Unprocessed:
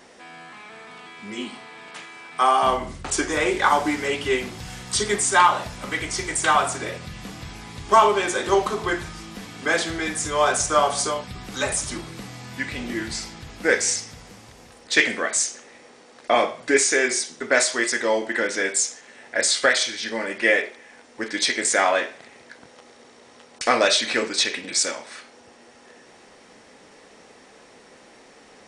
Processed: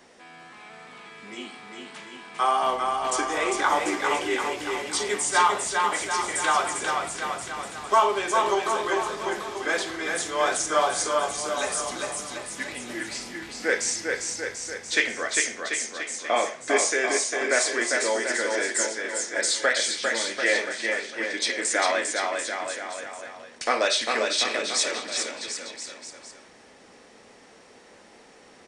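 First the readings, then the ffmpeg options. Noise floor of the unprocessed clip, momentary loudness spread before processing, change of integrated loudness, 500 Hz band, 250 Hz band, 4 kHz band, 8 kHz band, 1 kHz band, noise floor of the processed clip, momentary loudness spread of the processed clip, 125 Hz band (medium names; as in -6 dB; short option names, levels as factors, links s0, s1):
-50 dBFS, 19 LU, -3.5 dB, -3.0 dB, -5.0 dB, -2.5 dB, -2.5 dB, -2.5 dB, -52 dBFS, 14 LU, -12.5 dB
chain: -filter_complex "[0:a]acrossover=split=250|1300[s0][s1][s2];[s0]acompressor=threshold=0.00316:ratio=8[s3];[s3][s1][s2]amix=inputs=3:normalize=0,aecho=1:1:400|740|1029|1275|1483:0.631|0.398|0.251|0.158|0.1,volume=0.596"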